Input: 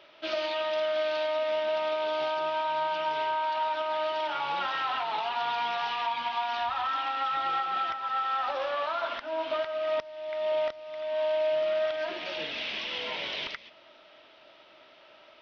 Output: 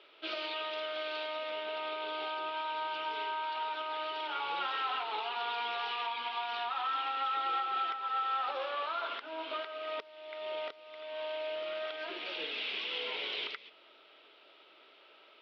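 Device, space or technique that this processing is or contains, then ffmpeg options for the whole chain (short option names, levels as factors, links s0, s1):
phone earpiece: -filter_complex "[0:a]highpass=370,equalizer=f=430:t=q:w=4:g=8,equalizer=f=620:t=q:w=4:g=-10,equalizer=f=950:t=q:w=4:g=-5,equalizer=f=1800:t=q:w=4:g=-6,lowpass=f=4400:w=0.5412,lowpass=f=4400:w=1.3066,asettb=1/sr,asplit=3[s0][s1][s2];[s0]atrim=end=1.504[s3];[s1]atrim=start=1.5:end=2.57,asetpts=PTS-STARTPTS,afade=t=in:d=0.004:c=qsin,afade=t=out:st=1.066:d=0.004:c=qsin,lowpass=5100[s4];[s2]atrim=start=2.566[s5];[s3][s4]acrossfade=d=0.004:c1=hsin:c2=qsin[s6];[s6][s5]acrossfade=d=0.004:c1=qsin:c2=hsin,volume=0.841"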